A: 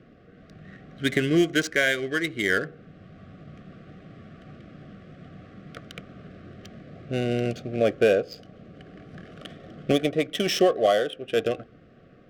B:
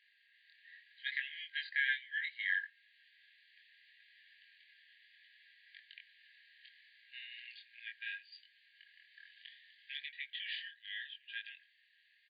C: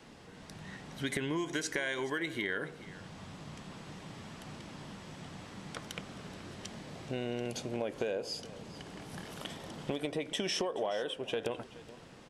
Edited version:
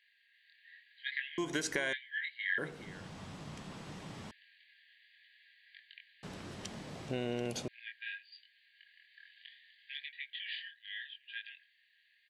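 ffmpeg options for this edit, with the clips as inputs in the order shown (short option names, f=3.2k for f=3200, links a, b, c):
-filter_complex "[2:a]asplit=3[a][b][c];[1:a]asplit=4[d][e][f][g];[d]atrim=end=1.382[h];[a]atrim=start=1.378:end=1.932[i];[e]atrim=start=1.928:end=2.582[j];[b]atrim=start=2.578:end=4.312[k];[f]atrim=start=4.308:end=6.232[l];[c]atrim=start=6.228:end=7.682[m];[g]atrim=start=7.678[n];[h][i]acrossfade=d=0.004:c1=hsin:c2=hsin[o];[o][j]acrossfade=d=0.004:c1=hsin:c2=hsin[p];[p][k]acrossfade=d=0.004:c1=hsin:c2=hsin[q];[q][l]acrossfade=d=0.004:c1=hsin:c2=hsin[r];[r][m]acrossfade=d=0.004:c1=hsin:c2=hsin[s];[s][n]acrossfade=d=0.004:c1=hsin:c2=hsin"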